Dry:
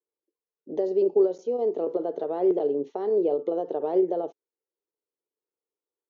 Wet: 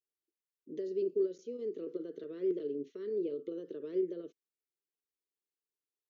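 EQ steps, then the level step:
Butterworth band-reject 790 Hz, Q 0.63
low-shelf EQ 400 Hz −3 dB
−5.5 dB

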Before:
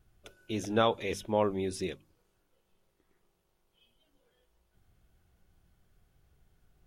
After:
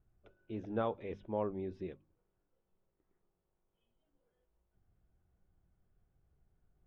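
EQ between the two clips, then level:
high-frequency loss of the air 230 metres
high-shelf EQ 2,200 Hz −11.5 dB
high-shelf EQ 4,500 Hz −5.5 dB
−6.5 dB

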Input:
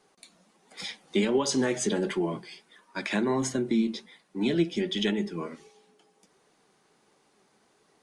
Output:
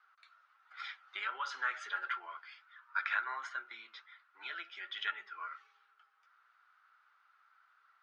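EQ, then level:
four-pole ladder high-pass 1,300 Hz, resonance 85%
high-frequency loss of the air 280 metres
+7.5 dB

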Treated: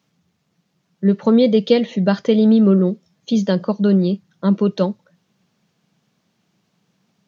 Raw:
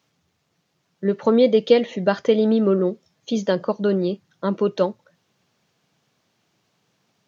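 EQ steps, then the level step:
dynamic equaliser 4,300 Hz, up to +5 dB, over −47 dBFS, Q 1.3
parametric band 190 Hz +10.5 dB 0.78 octaves
−1.0 dB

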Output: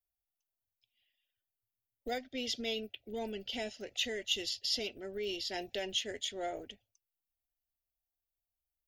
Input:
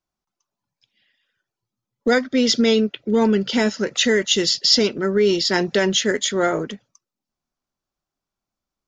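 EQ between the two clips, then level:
drawn EQ curve 100 Hz 0 dB, 150 Hz −27 dB, 270 Hz −16 dB, 490 Hz −15 dB, 730 Hz −6 dB, 1,100 Hz −29 dB, 2,800 Hz −4 dB, 4,600 Hz −12 dB, 6,800 Hz −13 dB, 12,000 Hz +10 dB
−6.0 dB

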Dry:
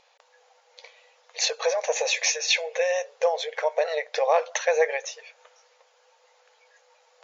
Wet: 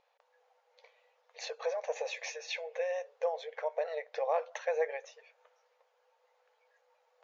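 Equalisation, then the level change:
low-pass filter 1,500 Hz 6 dB per octave
−9.0 dB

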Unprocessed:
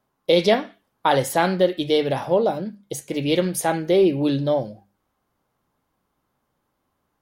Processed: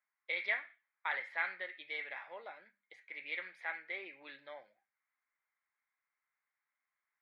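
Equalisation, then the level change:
four-pole ladder band-pass 2,300 Hz, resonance 65%
high-frequency loss of the air 480 metres
parametric band 2,900 Hz −11.5 dB 0.31 octaves
+6.0 dB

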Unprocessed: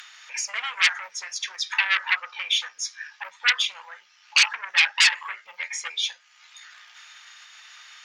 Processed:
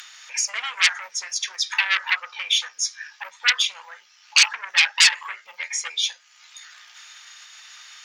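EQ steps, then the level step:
bass and treble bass −5 dB, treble +7 dB
low-shelf EQ 380 Hz +5 dB
0.0 dB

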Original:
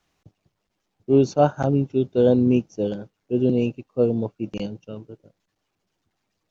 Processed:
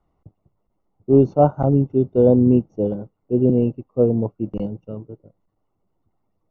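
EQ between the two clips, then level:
Savitzky-Golay smoothing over 65 samples
low-shelf EQ 76 Hz +9.5 dB
+2.5 dB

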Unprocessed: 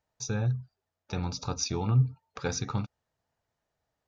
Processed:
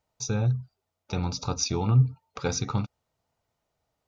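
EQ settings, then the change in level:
notch filter 1,700 Hz, Q 5.6
+3.5 dB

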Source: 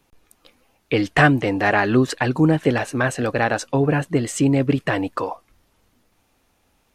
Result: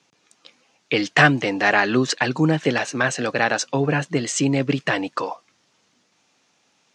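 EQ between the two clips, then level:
elliptic band-pass filter 140–6,500 Hz, stop band 60 dB
high-shelf EQ 2,200 Hz +11.5 dB
−2.0 dB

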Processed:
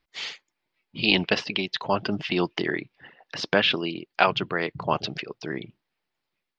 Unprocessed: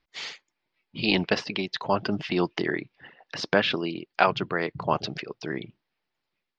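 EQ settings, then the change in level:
dynamic equaliser 3,000 Hz, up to +6 dB, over −41 dBFS, Q 1.8
0.0 dB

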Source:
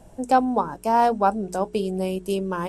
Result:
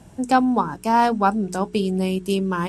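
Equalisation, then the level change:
high-pass filter 71 Hz 12 dB per octave
parametric band 590 Hz −10.5 dB 1.2 octaves
high-shelf EQ 10,000 Hz −9.5 dB
+7.0 dB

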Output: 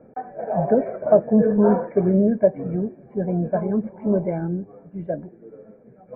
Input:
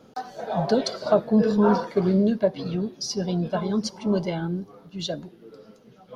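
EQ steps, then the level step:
Chebyshev low-pass with heavy ripple 2,400 Hz, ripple 9 dB
tilt shelving filter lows +6.5 dB, about 660 Hz
+5.0 dB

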